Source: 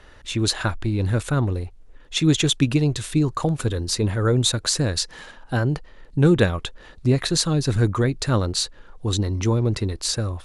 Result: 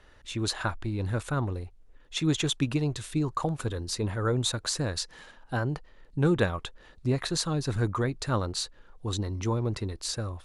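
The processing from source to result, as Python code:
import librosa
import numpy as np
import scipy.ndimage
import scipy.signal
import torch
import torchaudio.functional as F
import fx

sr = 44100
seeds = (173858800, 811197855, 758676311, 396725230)

y = fx.dynamic_eq(x, sr, hz=1000.0, q=1.0, threshold_db=-37.0, ratio=4.0, max_db=6)
y = F.gain(torch.from_numpy(y), -8.5).numpy()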